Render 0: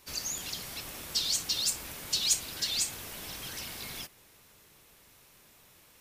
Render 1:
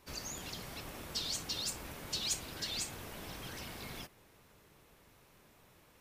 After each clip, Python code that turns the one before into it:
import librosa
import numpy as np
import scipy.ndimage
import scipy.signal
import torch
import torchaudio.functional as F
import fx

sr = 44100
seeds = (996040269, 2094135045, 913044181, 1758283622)

y = fx.high_shelf(x, sr, hz=2300.0, db=-11.5)
y = y * 10.0 ** (1.0 / 20.0)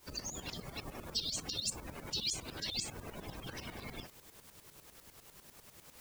y = fx.spec_gate(x, sr, threshold_db=-15, keep='strong')
y = fx.quant_dither(y, sr, seeds[0], bits=10, dither='triangular')
y = fx.tremolo_shape(y, sr, shape='saw_up', hz=10.0, depth_pct=75)
y = y * 10.0 ** (5.0 / 20.0)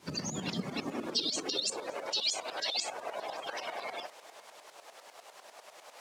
y = fx.air_absorb(x, sr, metres=60.0)
y = fx.filter_sweep_highpass(y, sr, from_hz=160.0, to_hz=660.0, start_s=0.3, end_s=2.27, q=2.7)
y = y + 10.0 ** (-23.5 / 20.0) * np.pad(y, (int(567 * sr / 1000.0), 0))[:len(y)]
y = y * 10.0 ** (7.0 / 20.0)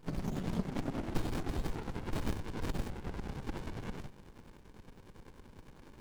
y = fx.running_max(x, sr, window=65)
y = y * 10.0 ** (2.5 / 20.0)